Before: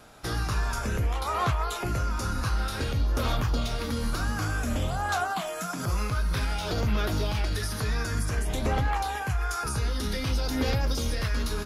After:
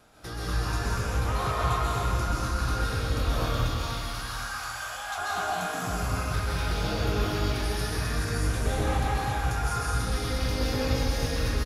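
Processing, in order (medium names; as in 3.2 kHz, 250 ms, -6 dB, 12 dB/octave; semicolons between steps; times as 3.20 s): 3.48–5.18 s: high-pass 800 Hz 24 dB/octave; speakerphone echo 110 ms, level -13 dB; plate-style reverb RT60 2.9 s, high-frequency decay 0.85×, pre-delay 115 ms, DRR -7 dB; trim -7 dB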